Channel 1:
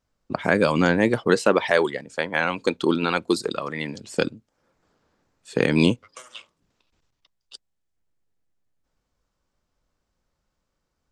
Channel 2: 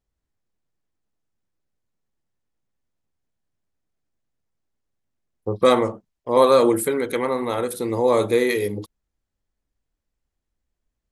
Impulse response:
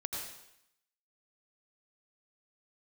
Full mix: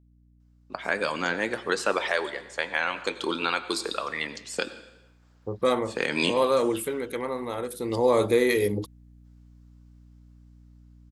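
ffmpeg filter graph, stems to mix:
-filter_complex "[0:a]highpass=frequency=1000:poles=1,dynaudnorm=framelen=690:gausssize=5:maxgain=7dB,flanger=delay=7.5:depth=3.6:regen=-76:speed=1.6:shape=triangular,adelay=400,volume=0dB,asplit=2[link_01][link_02];[link_02]volume=-12dB[link_03];[1:a]dynaudnorm=framelen=420:gausssize=9:maxgain=11.5dB,aeval=exprs='val(0)+0.00447*(sin(2*PI*60*n/s)+sin(2*PI*2*60*n/s)/2+sin(2*PI*3*60*n/s)/3+sin(2*PI*4*60*n/s)/4+sin(2*PI*5*60*n/s)/5)':channel_layout=same,volume=-3.5dB,afade=type=in:start_time=7.71:duration=0.59:silence=0.446684,asplit=2[link_04][link_05];[link_05]apad=whole_len=507701[link_06];[link_01][link_06]sidechaincompress=threshold=-27dB:ratio=8:attack=16:release=482[link_07];[2:a]atrim=start_sample=2205[link_08];[link_03][link_08]afir=irnorm=-1:irlink=0[link_09];[link_07][link_04][link_09]amix=inputs=3:normalize=0,alimiter=limit=-10.5dB:level=0:latency=1:release=410"

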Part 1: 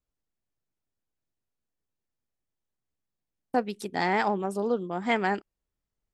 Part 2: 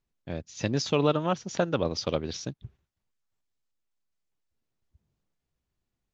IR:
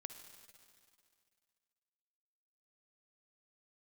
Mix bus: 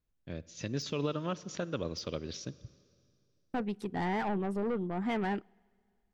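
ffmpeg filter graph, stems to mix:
-filter_complex "[0:a]asoftclip=type=tanh:threshold=-28dB,bass=frequency=250:gain=7,treble=frequency=4000:gain=-14,volume=-2.5dB,asplit=2[link_01][link_02];[link_02]volume=-19.5dB[link_03];[1:a]deesser=0.7,equalizer=frequency=790:width_type=o:width=0.57:gain=-9,alimiter=limit=-17dB:level=0:latency=1:release=137,volume=-8dB,asplit=2[link_04][link_05];[link_05]volume=-4dB[link_06];[2:a]atrim=start_sample=2205[link_07];[link_03][link_06]amix=inputs=2:normalize=0[link_08];[link_08][link_07]afir=irnorm=-1:irlink=0[link_09];[link_01][link_04][link_09]amix=inputs=3:normalize=0"

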